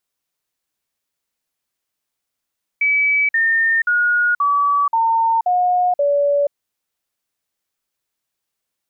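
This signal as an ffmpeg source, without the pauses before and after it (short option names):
-f lavfi -i "aevalsrc='0.224*clip(min(mod(t,0.53),0.48-mod(t,0.53))/0.005,0,1)*sin(2*PI*2290*pow(2,-floor(t/0.53)/3)*mod(t,0.53))':d=3.71:s=44100"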